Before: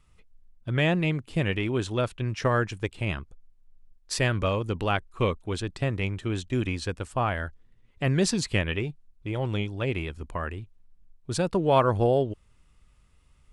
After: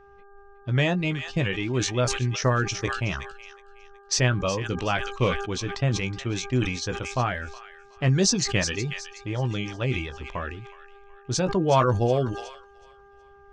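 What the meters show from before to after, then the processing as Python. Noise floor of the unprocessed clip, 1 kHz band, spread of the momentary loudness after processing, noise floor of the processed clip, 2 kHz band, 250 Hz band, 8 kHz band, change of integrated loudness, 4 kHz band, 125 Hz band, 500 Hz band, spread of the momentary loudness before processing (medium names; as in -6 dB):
-61 dBFS, +1.0 dB, 13 LU, -52 dBFS, +2.0 dB, +1.0 dB, +9.0 dB, +2.0 dB, +5.0 dB, +2.5 dB, 0.0 dB, 11 LU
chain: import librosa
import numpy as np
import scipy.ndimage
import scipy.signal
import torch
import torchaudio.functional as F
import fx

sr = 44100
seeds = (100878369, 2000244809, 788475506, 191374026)

y = fx.dynamic_eq(x, sr, hz=140.0, q=4.1, threshold_db=-43.0, ratio=4.0, max_db=4)
y = fx.lowpass_res(y, sr, hz=6100.0, q=4.7)
y = fx.dereverb_blind(y, sr, rt60_s=0.62)
y = fx.high_shelf(y, sr, hz=4400.0, db=-3.5)
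y = fx.doubler(y, sr, ms=16.0, db=-9.5)
y = fx.env_lowpass(y, sr, base_hz=2500.0, full_db=-23.0)
y = fx.echo_wet_highpass(y, sr, ms=369, feedback_pct=34, hz=1600.0, wet_db=-11.5)
y = fx.dmg_buzz(y, sr, base_hz=400.0, harmonics=4, level_db=-53.0, tilt_db=-4, odd_only=False)
y = fx.sustainer(y, sr, db_per_s=64.0)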